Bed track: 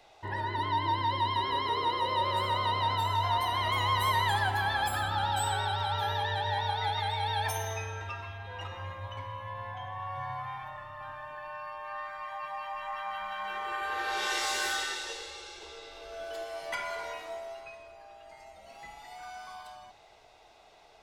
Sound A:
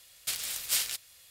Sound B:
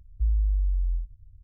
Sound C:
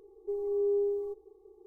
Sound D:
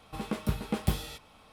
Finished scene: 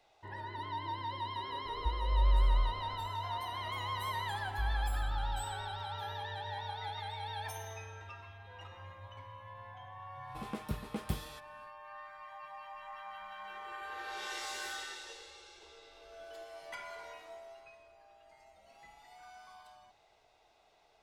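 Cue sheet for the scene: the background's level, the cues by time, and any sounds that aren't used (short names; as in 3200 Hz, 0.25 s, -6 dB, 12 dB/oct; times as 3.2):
bed track -10 dB
1.65 add B -1 dB + chorus 1.4 Hz
4.38 add B -10.5 dB
10.22 add D -8 dB, fades 0.10 s
not used: A, C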